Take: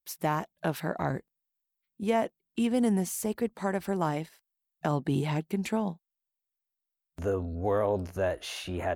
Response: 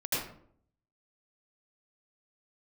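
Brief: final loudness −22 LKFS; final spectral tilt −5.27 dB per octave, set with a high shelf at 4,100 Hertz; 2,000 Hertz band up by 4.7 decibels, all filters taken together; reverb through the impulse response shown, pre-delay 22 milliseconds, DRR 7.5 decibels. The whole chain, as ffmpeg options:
-filter_complex "[0:a]equalizer=frequency=2000:width_type=o:gain=5,highshelf=frequency=4100:gain=4.5,asplit=2[link_01][link_02];[1:a]atrim=start_sample=2205,adelay=22[link_03];[link_02][link_03]afir=irnorm=-1:irlink=0,volume=-15dB[link_04];[link_01][link_04]amix=inputs=2:normalize=0,volume=7.5dB"

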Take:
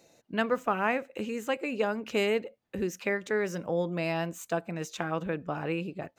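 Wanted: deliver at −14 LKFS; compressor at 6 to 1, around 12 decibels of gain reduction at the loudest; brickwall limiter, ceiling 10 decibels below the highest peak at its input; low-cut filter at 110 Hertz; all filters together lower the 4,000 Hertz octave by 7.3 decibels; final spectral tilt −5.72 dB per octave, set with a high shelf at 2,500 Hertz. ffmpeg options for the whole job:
ffmpeg -i in.wav -af "highpass=110,highshelf=frequency=2500:gain=-5,equalizer=frequency=4000:width_type=o:gain=-7,acompressor=threshold=-37dB:ratio=6,volume=29dB,alimiter=limit=-2.5dB:level=0:latency=1" out.wav

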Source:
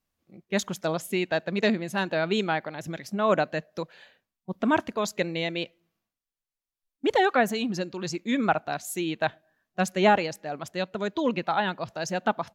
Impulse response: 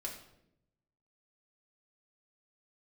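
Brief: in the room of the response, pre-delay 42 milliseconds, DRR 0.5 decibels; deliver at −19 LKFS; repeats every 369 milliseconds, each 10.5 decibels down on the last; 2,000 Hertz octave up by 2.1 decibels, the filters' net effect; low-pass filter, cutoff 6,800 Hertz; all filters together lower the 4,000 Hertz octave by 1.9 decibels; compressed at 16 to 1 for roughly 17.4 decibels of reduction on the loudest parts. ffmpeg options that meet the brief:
-filter_complex "[0:a]lowpass=6800,equalizer=frequency=2000:width_type=o:gain=3.5,equalizer=frequency=4000:width_type=o:gain=-3.5,acompressor=threshold=-33dB:ratio=16,aecho=1:1:369|738|1107:0.299|0.0896|0.0269,asplit=2[link_01][link_02];[1:a]atrim=start_sample=2205,adelay=42[link_03];[link_02][link_03]afir=irnorm=-1:irlink=0,volume=0dB[link_04];[link_01][link_04]amix=inputs=2:normalize=0,volume=16.5dB"

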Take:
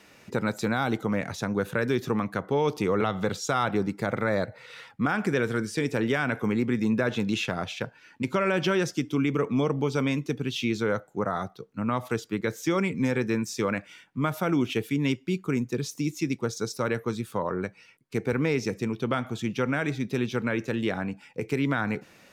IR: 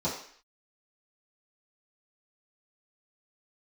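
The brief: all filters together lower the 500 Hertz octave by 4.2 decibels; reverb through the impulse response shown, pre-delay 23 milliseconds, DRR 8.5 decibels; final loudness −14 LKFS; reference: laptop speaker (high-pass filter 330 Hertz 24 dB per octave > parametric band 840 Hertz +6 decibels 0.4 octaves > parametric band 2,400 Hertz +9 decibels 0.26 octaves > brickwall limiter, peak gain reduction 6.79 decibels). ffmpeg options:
-filter_complex "[0:a]equalizer=frequency=500:width_type=o:gain=-5,asplit=2[link_01][link_02];[1:a]atrim=start_sample=2205,adelay=23[link_03];[link_02][link_03]afir=irnorm=-1:irlink=0,volume=-16.5dB[link_04];[link_01][link_04]amix=inputs=2:normalize=0,highpass=frequency=330:width=0.5412,highpass=frequency=330:width=1.3066,equalizer=frequency=840:width_type=o:width=0.4:gain=6,equalizer=frequency=2400:width_type=o:width=0.26:gain=9,volume=17.5dB,alimiter=limit=-2dB:level=0:latency=1"

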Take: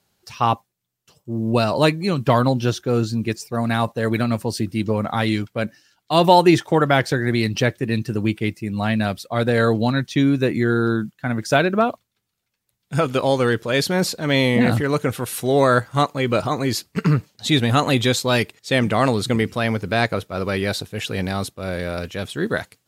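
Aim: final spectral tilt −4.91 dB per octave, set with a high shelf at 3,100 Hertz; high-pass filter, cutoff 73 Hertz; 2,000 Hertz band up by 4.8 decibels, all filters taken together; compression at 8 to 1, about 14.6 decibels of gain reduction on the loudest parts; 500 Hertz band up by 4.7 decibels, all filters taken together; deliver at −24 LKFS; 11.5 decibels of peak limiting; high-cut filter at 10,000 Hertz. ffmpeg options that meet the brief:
ffmpeg -i in.wav -af "highpass=73,lowpass=10000,equalizer=frequency=500:width_type=o:gain=5.5,equalizer=frequency=2000:width_type=o:gain=8,highshelf=frequency=3100:gain=-6.5,acompressor=threshold=-20dB:ratio=8,volume=5.5dB,alimiter=limit=-12.5dB:level=0:latency=1" out.wav

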